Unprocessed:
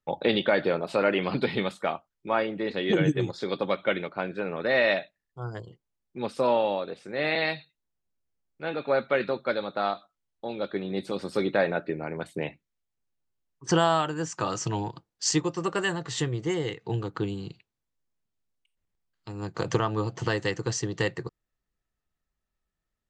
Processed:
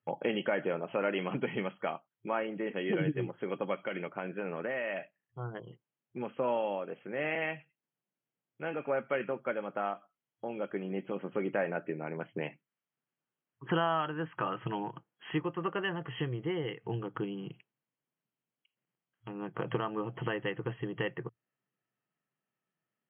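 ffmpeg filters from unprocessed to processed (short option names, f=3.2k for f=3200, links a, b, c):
-filter_complex "[0:a]asettb=1/sr,asplit=3[a][b][c];[a]atrim=end=3.754[d];[b]atrim=start=3.75:end=6.37,asetpts=PTS-STARTPTS,afade=t=in:d=0.004:c=qsin,afade=t=out:st=2.616:d=0.004:c=qsin,acompressor=threshold=-25dB:ratio=6:attack=3.2:release=140:knee=1:detection=peak[e];[c]atrim=start=6.366[f];[d][e]acrossfade=d=0.004:c1=hsin:c2=qsin[g];[g][f]acrossfade=d=0.004:c1=qsin:c2=hsin,asettb=1/sr,asplit=3[h][i][j];[h]atrim=end=12.344[k];[i]atrim=start=12.34:end=15.71,asetpts=PTS-STARTPTS,afade=t=in:d=0.004:c=qsin,afade=t=out:st=3.366:d=0.004:c=qsin,equalizer=f=1.4k:t=o:w=1.1:g=4[l];[j]atrim=start=15.706[m];[k][l]acrossfade=d=0.004:c1=hsin:c2=qsin[n];[n][m]acrossfade=d=0.004:c1=qsin:c2=hsin,afftfilt=real='re*between(b*sr/4096,110,3300)':imag='im*between(b*sr/4096,110,3300)':win_size=4096:overlap=0.75,acompressor=threshold=-41dB:ratio=1.5"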